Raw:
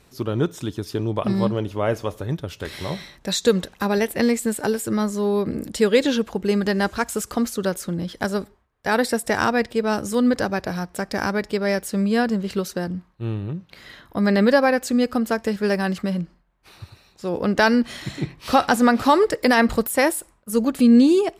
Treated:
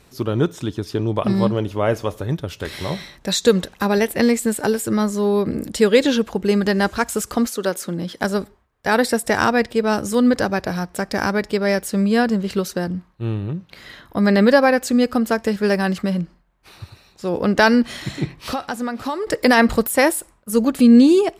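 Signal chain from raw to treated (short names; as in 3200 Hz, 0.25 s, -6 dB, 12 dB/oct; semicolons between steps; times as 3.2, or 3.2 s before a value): 0.53–1.07 high shelf 8500 Hz -8 dB; 7.46–8.23 HPF 350 Hz -> 120 Hz 12 dB/oct; 18.41–19.27 compressor 3:1, threshold -29 dBFS, peak gain reduction 13.5 dB; gain +3 dB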